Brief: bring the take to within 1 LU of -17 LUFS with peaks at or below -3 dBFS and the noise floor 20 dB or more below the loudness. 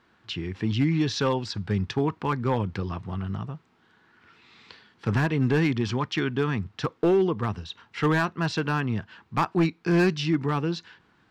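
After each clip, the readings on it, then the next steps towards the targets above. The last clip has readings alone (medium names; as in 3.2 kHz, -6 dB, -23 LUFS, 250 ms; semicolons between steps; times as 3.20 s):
clipped samples 0.8%; clipping level -15.5 dBFS; loudness -26.5 LUFS; peak level -15.5 dBFS; loudness target -17.0 LUFS
-> clip repair -15.5 dBFS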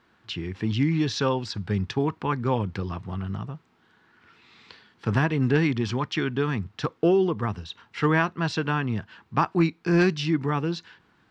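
clipped samples 0.0%; loudness -26.0 LUFS; peak level -7.5 dBFS; loudness target -17.0 LUFS
-> trim +9 dB; peak limiter -3 dBFS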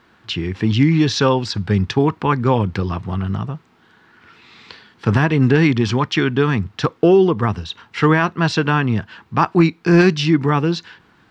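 loudness -17.5 LUFS; peak level -3.0 dBFS; noise floor -55 dBFS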